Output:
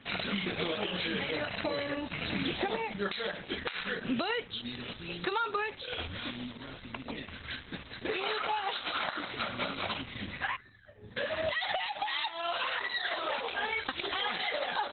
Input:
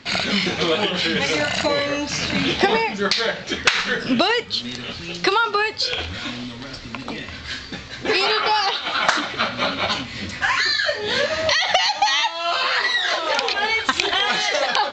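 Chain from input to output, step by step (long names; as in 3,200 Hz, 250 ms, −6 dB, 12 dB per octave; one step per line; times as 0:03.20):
downward compressor 6 to 1, threshold −20 dBFS, peak gain reduction 10 dB
0:10.56–0:11.17: drawn EQ curve 130 Hz 0 dB, 190 Hz −4 dB, 460 Hz −19 dB, 1,700 Hz −23 dB, 3,900 Hz −29 dB, 6,600 Hz −19 dB
level −7.5 dB
Opus 8 kbit/s 48,000 Hz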